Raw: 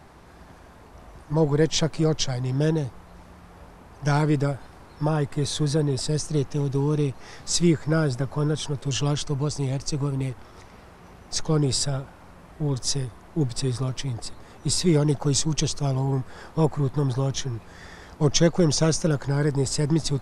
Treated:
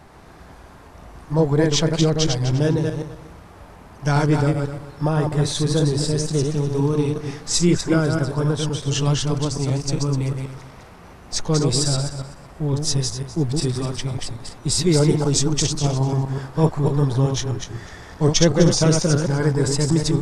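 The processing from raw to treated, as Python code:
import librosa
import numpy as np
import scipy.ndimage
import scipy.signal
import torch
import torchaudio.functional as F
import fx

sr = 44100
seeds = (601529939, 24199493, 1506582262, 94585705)

y = fx.reverse_delay_fb(x, sr, ms=126, feedback_pct=41, wet_db=-3.5)
y = y * librosa.db_to_amplitude(2.5)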